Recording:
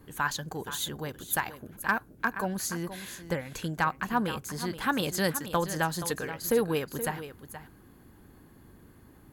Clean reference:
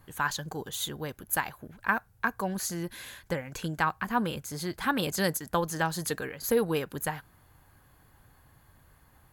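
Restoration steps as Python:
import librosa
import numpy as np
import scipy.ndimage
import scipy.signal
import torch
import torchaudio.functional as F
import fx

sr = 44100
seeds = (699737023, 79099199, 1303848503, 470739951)

y = fx.fix_declip(x, sr, threshold_db=-15.0)
y = fx.noise_reduce(y, sr, print_start_s=8.76, print_end_s=9.26, reduce_db=6.0)
y = fx.fix_echo_inverse(y, sr, delay_ms=475, level_db=-12.0)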